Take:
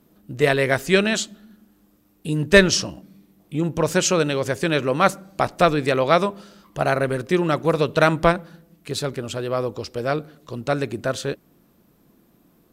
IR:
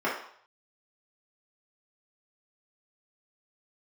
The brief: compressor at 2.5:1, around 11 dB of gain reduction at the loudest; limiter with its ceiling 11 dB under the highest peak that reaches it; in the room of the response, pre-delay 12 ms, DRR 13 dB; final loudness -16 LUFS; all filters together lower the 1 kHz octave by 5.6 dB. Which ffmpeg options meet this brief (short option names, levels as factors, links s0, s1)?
-filter_complex "[0:a]equalizer=f=1000:t=o:g=-8.5,acompressor=threshold=0.0562:ratio=2.5,alimiter=limit=0.0708:level=0:latency=1,asplit=2[s0][s1];[1:a]atrim=start_sample=2205,adelay=12[s2];[s1][s2]afir=irnorm=-1:irlink=0,volume=0.0531[s3];[s0][s3]amix=inputs=2:normalize=0,volume=7.08"